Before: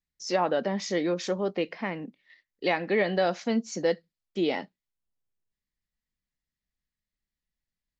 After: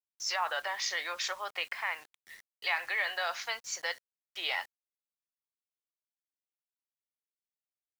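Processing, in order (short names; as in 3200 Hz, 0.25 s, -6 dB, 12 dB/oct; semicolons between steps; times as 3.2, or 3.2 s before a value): HPF 980 Hz 24 dB/oct; high shelf 5700 Hz -6.5 dB; in parallel at -3 dB: negative-ratio compressor -38 dBFS, ratio -0.5; on the sum: vibrato 0.86 Hz 32 cents; bit-crush 9-bit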